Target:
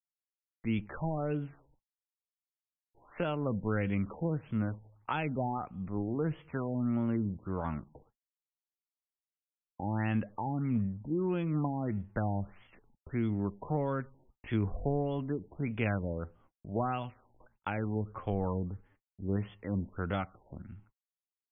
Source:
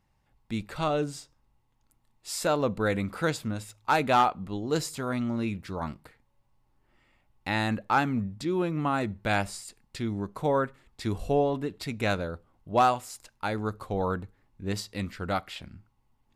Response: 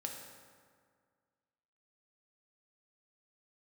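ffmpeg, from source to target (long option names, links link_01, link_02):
-filter_complex "[0:a]acrossover=split=240|3000[link_01][link_02][link_03];[link_02]acompressor=threshold=-34dB:ratio=5[link_04];[link_01][link_04][link_03]amix=inputs=3:normalize=0,highshelf=frequency=4000:gain=3.5,agate=range=-57dB:threshold=-56dB:ratio=16:detection=peak,atempo=0.76,afftfilt=real='re*lt(b*sr/1024,940*pow(3500/940,0.5+0.5*sin(2*PI*1.6*pts/sr)))':imag='im*lt(b*sr/1024,940*pow(3500/940,0.5+0.5*sin(2*PI*1.6*pts/sr)))':win_size=1024:overlap=0.75"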